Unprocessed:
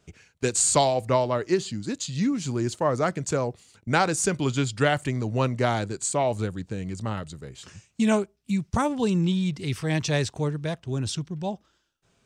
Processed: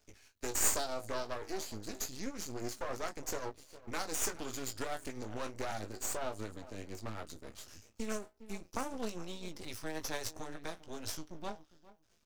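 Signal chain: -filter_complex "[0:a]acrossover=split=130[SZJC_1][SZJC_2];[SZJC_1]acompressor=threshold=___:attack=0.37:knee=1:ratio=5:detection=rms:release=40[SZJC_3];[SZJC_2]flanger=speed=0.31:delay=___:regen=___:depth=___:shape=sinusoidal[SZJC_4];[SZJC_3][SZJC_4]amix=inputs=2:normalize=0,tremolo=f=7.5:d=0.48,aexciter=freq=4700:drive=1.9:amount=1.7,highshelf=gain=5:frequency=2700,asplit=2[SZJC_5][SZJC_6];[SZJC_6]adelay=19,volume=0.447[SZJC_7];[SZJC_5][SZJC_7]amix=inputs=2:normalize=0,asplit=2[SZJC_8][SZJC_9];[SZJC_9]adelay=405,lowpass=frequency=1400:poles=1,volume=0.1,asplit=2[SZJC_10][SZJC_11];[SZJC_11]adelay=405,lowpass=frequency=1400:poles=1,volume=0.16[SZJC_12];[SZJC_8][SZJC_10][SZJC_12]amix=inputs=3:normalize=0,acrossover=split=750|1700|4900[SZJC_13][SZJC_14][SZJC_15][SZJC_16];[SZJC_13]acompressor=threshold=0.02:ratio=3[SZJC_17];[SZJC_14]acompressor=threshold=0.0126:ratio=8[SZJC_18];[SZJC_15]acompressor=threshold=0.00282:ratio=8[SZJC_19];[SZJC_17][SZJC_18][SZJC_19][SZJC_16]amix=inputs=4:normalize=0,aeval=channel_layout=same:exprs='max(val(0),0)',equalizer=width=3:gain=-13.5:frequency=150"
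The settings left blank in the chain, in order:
0.00501, 6.8, 70, 6.1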